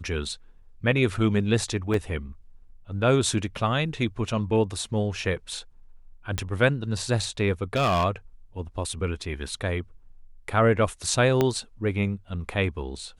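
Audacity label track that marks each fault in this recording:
1.940000	1.940000	dropout 2.5 ms
6.380000	6.380000	pop -12 dBFS
7.760000	8.050000	clipped -18.5 dBFS
11.410000	11.410000	pop -9 dBFS

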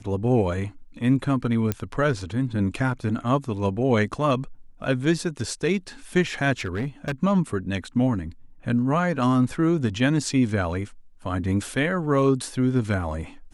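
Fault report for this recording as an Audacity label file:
1.720000	1.720000	pop -10 dBFS
6.600000	7.120000	clipped -22.5 dBFS

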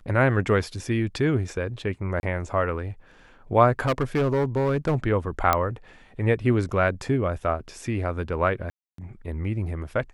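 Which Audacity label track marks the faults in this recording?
2.200000	2.230000	dropout 31 ms
3.790000	4.960000	clipped -18.5 dBFS
5.530000	5.530000	pop -6 dBFS
8.700000	8.980000	dropout 283 ms

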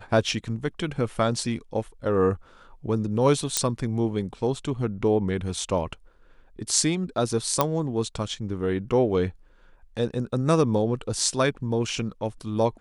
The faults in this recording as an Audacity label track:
3.570000	3.570000	pop -5 dBFS
7.610000	7.610000	pop -6 dBFS

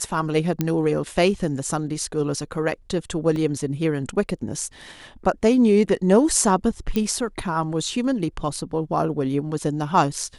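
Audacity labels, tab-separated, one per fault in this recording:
0.610000	0.610000	pop -8 dBFS
3.360000	3.360000	dropout 2.1 ms
6.960000	6.960000	pop -11 dBFS

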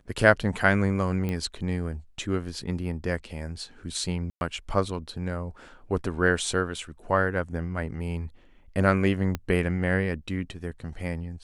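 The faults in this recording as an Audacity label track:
1.290000	1.290000	pop -18 dBFS
4.300000	4.410000	dropout 111 ms
9.350000	9.350000	pop -15 dBFS

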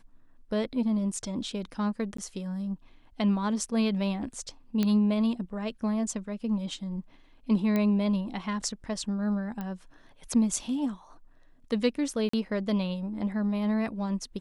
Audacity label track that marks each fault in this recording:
2.170000	2.180000	dropout 14 ms
4.830000	4.830000	pop -14 dBFS
7.760000	7.760000	pop -16 dBFS
9.610000	9.610000	pop -23 dBFS
12.290000	12.330000	dropout 44 ms

